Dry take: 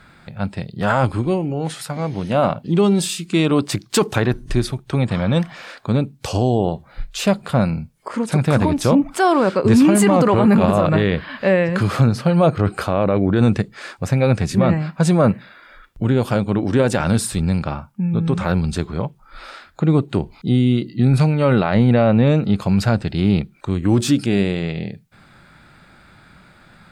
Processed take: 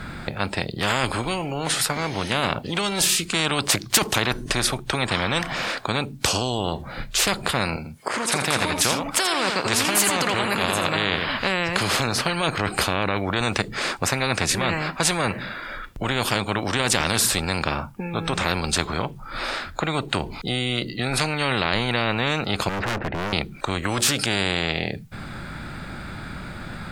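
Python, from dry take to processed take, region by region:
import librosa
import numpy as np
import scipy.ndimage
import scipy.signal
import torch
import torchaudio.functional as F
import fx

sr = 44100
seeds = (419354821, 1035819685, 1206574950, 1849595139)

y = fx.chain(x, sr, fx.highpass(hz=470.0, slope=6),
    fx.echo_single(ms=83, db=-10.5), at=(7.76, 11.27))
y = fx.chain(y, sr, fx.lowpass(hz=2100.0, slope=24),
    fx.overload_stage(gain_db=24.5), at=(22.69, 23.33))
y = fx.low_shelf(y, sr, hz=220.0, db=10.5)
y = fx.spectral_comp(y, sr, ratio=4.0)
y = y * 10.0 ** (-4.0 / 20.0)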